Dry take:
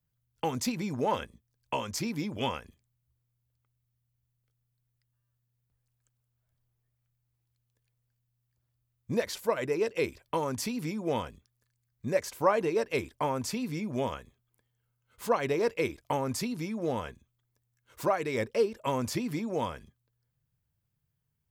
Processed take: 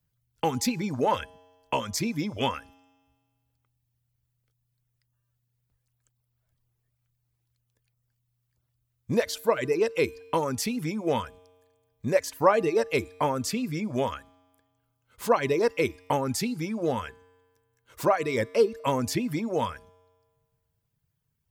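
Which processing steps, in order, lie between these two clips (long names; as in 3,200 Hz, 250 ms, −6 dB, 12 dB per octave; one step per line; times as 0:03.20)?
reverb reduction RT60 0.68 s
tuned comb filter 91 Hz, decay 1.6 s, harmonics odd, mix 40%
level +9 dB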